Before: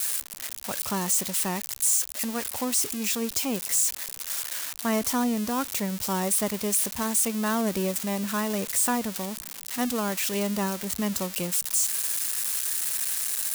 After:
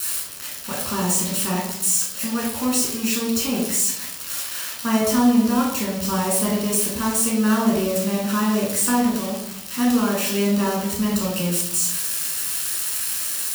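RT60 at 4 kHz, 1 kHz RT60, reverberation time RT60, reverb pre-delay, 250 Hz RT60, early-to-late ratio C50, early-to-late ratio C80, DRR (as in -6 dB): 0.65 s, 0.75 s, 0.80 s, 12 ms, 1.2 s, 3.5 dB, 7.0 dB, -3.5 dB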